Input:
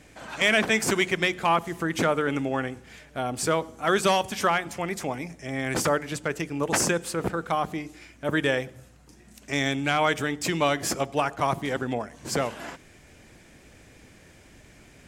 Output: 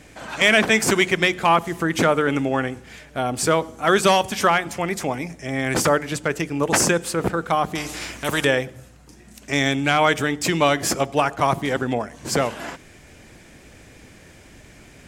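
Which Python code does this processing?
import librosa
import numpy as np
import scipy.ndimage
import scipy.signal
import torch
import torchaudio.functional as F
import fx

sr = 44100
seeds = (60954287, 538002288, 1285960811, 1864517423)

y = fx.spectral_comp(x, sr, ratio=2.0, at=(7.75, 8.45))
y = y * 10.0 ** (5.5 / 20.0)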